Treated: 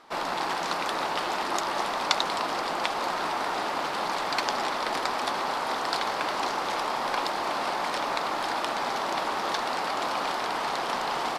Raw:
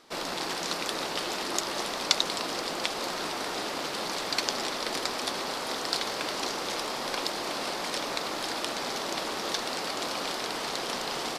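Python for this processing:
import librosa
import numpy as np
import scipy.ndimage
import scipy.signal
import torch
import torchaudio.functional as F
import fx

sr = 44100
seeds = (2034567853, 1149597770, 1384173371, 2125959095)

y = fx.curve_eq(x, sr, hz=(490.0, 860.0, 5800.0), db=(0, 9, -5))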